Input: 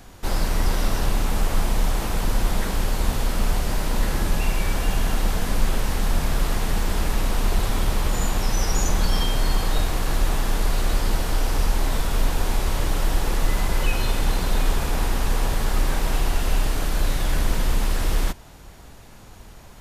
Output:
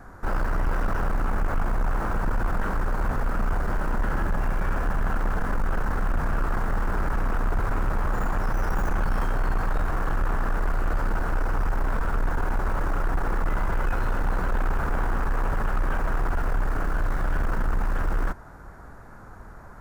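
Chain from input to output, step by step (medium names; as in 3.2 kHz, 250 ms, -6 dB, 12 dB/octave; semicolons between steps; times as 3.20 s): tracing distortion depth 0.11 ms; resonant high shelf 2.1 kHz -12.5 dB, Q 3; saturation -18 dBFS, distortion -14 dB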